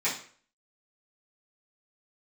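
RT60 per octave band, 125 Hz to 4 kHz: 0.45, 0.45, 0.50, 0.45, 0.45, 0.40 seconds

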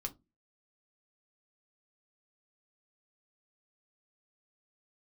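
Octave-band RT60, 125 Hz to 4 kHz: 0.35, 0.40, 0.25, 0.20, 0.15, 0.15 seconds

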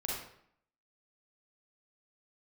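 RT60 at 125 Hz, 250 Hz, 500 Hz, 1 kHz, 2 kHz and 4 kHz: 0.70, 0.75, 0.65, 0.65, 0.60, 0.50 seconds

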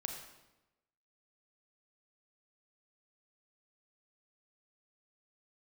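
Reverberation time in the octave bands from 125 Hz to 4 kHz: 1.1, 1.1, 1.0, 0.95, 0.90, 0.80 seconds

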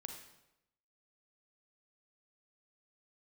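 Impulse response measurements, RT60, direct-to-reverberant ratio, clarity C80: 0.90 s, 3.5 dB, 8.0 dB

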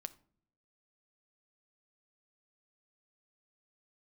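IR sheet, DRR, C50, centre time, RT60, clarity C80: 12.0 dB, 19.0 dB, 2 ms, non-exponential decay, 23.0 dB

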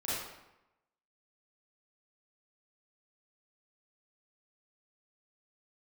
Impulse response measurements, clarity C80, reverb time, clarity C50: 1.0 dB, 0.90 s, −3.0 dB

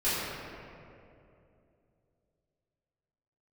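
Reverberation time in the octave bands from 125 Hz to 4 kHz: 3.4, 3.1, 3.1, 2.4, 2.0, 1.4 seconds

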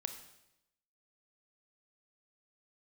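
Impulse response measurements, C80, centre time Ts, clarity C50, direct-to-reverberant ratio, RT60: 11.5 dB, 15 ms, 9.0 dB, 7.0 dB, 0.85 s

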